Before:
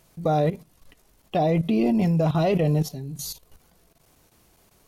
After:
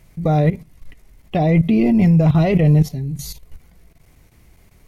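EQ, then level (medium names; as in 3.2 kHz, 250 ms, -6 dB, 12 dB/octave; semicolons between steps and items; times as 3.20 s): bass shelf 120 Hz +8.5 dB; bass shelf 270 Hz +8.5 dB; peaking EQ 2.1 kHz +10.5 dB 0.48 oct; 0.0 dB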